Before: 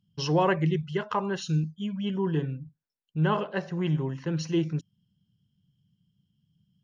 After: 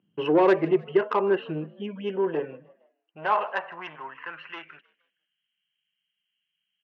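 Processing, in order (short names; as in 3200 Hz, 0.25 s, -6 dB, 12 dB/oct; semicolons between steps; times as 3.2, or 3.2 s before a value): Chebyshev low-pass 2800 Hz, order 5; in parallel at 0 dB: compressor, threshold -41 dBFS, peak gain reduction 19.5 dB; on the sum: soft clip -19.5 dBFS, distortion -16 dB; high-pass sweep 360 Hz -> 2200 Hz, 1.69–5.53; frequency-shifting echo 0.155 s, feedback 45%, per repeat +58 Hz, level -23 dB; gain +3 dB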